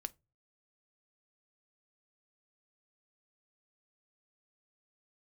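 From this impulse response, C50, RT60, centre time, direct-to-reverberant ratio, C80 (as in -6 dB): 26.5 dB, no single decay rate, 2 ms, 11.5 dB, 35.5 dB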